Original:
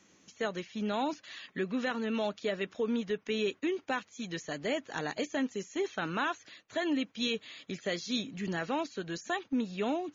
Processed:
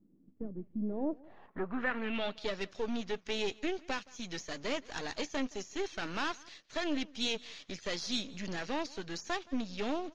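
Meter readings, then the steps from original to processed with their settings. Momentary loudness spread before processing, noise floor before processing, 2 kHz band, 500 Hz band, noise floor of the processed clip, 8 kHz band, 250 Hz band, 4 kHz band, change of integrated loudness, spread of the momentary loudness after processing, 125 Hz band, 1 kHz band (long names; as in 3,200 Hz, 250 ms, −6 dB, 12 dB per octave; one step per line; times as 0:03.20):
6 LU, −65 dBFS, −2.0 dB, −4.0 dB, −65 dBFS, can't be measured, −3.5 dB, 0.0 dB, −3.0 dB, 7 LU, −4.5 dB, −4.0 dB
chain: gain on one half-wave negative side −12 dB
low-pass filter sweep 260 Hz → 5,500 Hz, 0:00.73–0:02.53
single-tap delay 170 ms −23.5 dB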